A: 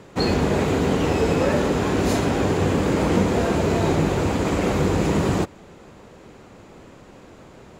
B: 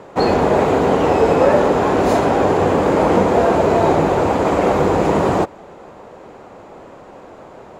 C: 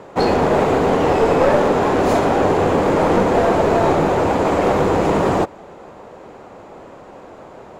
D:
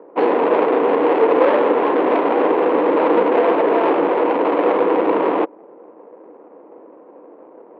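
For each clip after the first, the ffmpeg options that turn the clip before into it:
-af "equalizer=f=740:w=0.55:g=14,volume=0.75"
-af "aeval=exprs='clip(val(0),-1,0.224)':c=same"
-af "adynamicsmooth=sensitivity=0.5:basefreq=580,highpass=f=240:w=0.5412,highpass=f=240:w=1.3066,equalizer=f=310:t=q:w=4:g=9,equalizer=f=480:t=q:w=4:g=9,equalizer=f=1000:t=q:w=4:g=7,lowpass=f=2700:w=0.5412,lowpass=f=2700:w=1.3066,crystalizer=i=7.5:c=0,volume=0.473"

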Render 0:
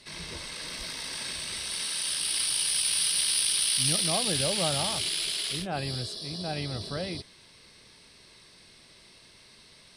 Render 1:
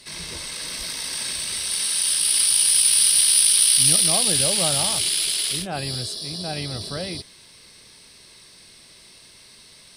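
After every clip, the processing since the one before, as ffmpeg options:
-af "highshelf=f=6800:g=12,volume=1.41"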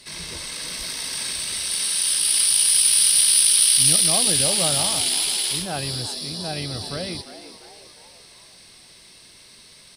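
-filter_complex "[0:a]asplit=6[s0][s1][s2][s3][s4][s5];[s1]adelay=349,afreqshift=110,volume=0.224[s6];[s2]adelay=698,afreqshift=220,volume=0.112[s7];[s3]adelay=1047,afreqshift=330,volume=0.0562[s8];[s4]adelay=1396,afreqshift=440,volume=0.0279[s9];[s5]adelay=1745,afreqshift=550,volume=0.014[s10];[s0][s6][s7][s8][s9][s10]amix=inputs=6:normalize=0"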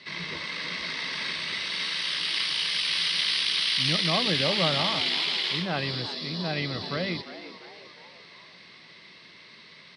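-af "highpass=150,equalizer=f=170:t=q:w=4:g=5,equalizer=f=760:t=q:w=4:g=-4,equalizer=f=1100:t=q:w=4:g=5,equalizer=f=2000:t=q:w=4:g=8,lowpass=f=4200:w=0.5412,lowpass=f=4200:w=1.3066"

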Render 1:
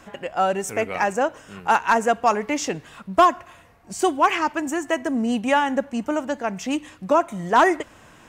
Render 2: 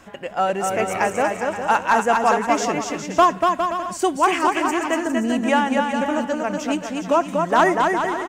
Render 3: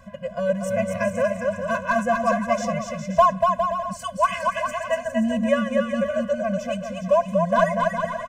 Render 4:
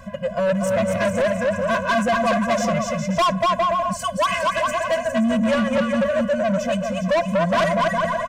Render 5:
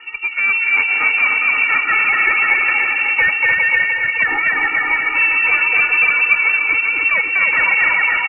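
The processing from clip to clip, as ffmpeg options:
-af "aecho=1:1:240|408|525.6|607.9|665.5:0.631|0.398|0.251|0.158|0.1"
-af "tiltshelf=f=880:g=5,afftfilt=real='re*eq(mod(floor(b*sr/1024/240),2),0)':imag='im*eq(mod(floor(b*sr/1024/240),2),0)':win_size=1024:overlap=0.75"
-af "asoftclip=type=tanh:threshold=0.0708,volume=2.37"
-af "aecho=1:1:300|555|771.8|956|1113:0.631|0.398|0.251|0.158|0.1,lowpass=f=2500:t=q:w=0.5098,lowpass=f=2500:t=q:w=0.6013,lowpass=f=2500:t=q:w=0.9,lowpass=f=2500:t=q:w=2.563,afreqshift=-2900,volume=1.41"

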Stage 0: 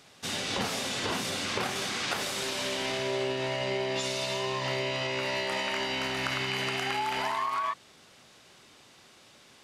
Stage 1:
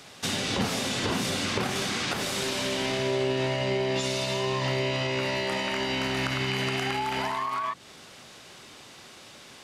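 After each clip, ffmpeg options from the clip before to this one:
-filter_complex "[0:a]acrossover=split=340[s0][s1];[s1]acompressor=threshold=0.0158:ratio=5[s2];[s0][s2]amix=inputs=2:normalize=0,volume=2.51"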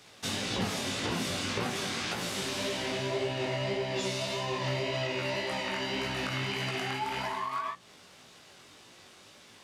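-filter_complex "[0:a]flanger=delay=9:depth=3.2:regen=77:speed=0.3:shape=sinusoidal,asplit=2[s0][s1];[s1]aeval=exprs='sgn(val(0))*max(abs(val(0))-0.00266,0)':c=same,volume=0.473[s2];[s0][s2]amix=inputs=2:normalize=0,flanger=delay=16.5:depth=5.8:speed=1.8"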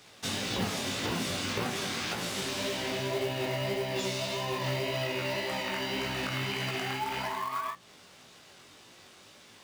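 -af "acrusher=bits=4:mode=log:mix=0:aa=0.000001"

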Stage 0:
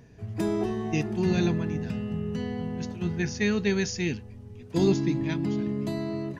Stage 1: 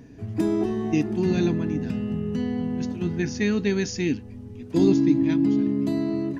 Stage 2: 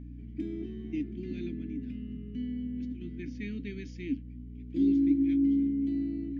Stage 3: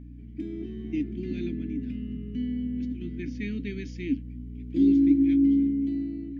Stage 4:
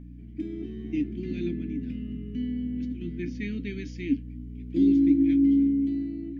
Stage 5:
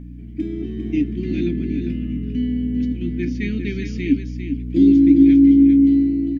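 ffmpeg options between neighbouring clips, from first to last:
-filter_complex "[0:a]equalizer=f=280:t=o:w=0.45:g=14,asplit=2[s0][s1];[s1]acompressor=threshold=0.0355:ratio=6,volume=0.891[s2];[s0][s2]amix=inputs=2:normalize=0,volume=0.708"
-filter_complex "[0:a]asplit=3[s0][s1][s2];[s0]bandpass=f=270:t=q:w=8,volume=1[s3];[s1]bandpass=f=2290:t=q:w=8,volume=0.501[s4];[s2]bandpass=f=3010:t=q:w=8,volume=0.355[s5];[s3][s4][s5]amix=inputs=3:normalize=0,aeval=exprs='val(0)+0.01*(sin(2*PI*60*n/s)+sin(2*PI*2*60*n/s)/2+sin(2*PI*3*60*n/s)/3+sin(2*PI*4*60*n/s)/4+sin(2*PI*5*60*n/s)/5)':c=same,volume=0.75"
-af "dynaudnorm=f=160:g=9:m=1.78"
-af "flanger=delay=5.7:depth=1.3:regen=77:speed=0.61:shape=sinusoidal,volume=1.78"
-af "aecho=1:1:400:0.398,volume=2.51"

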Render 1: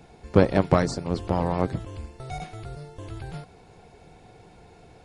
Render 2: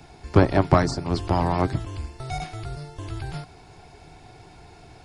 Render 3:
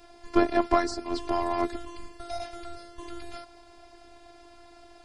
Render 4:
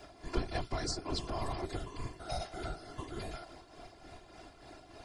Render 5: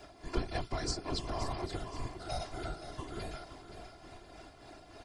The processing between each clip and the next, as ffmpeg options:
-filter_complex "[0:a]equalizer=f=200:t=o:w=0.33:g=-10,equalizer=f=500:t=o:w=0.33:g=-12,equalizer=f=5000:t=o:w=0.33:g=5,acrossover=split=270|1700[s0][s1][s2];[s2]alimiter=level_in=1.58:limit=0.0631:level=0:latency=1:release=200,volume=0.631[s3];[s0][s1][s3]amix=inputs=3:normalize=0,volume=1.78"
-af "equalizer=f=110:t=o:w=1.3:g=-8,afftfilt=real='hypot(re,im)*cos(PI*b)':imag='0':win_size=512:overlap=0.75"
-filter_complex "[0:a]tremolo=f=3.4:d=0.57,acrossover=split=130|3000[s0][s1][s2];[s1]acompressor=threshold=0.0141:ratio=10[s3];[s0][s3][s2]amix=inputs=3:normalize=0,afftfilt=real='hypot(re,im)*cos(2*PI*random(0))':imag='hypot(re,im)*sin(2*PI*random(1))':win_size=512:overlap=0.75,volume=2.37"
-af "aecho=1:1:524|1048|1572|2096:0.282|0.116|0.0474|0.0194"

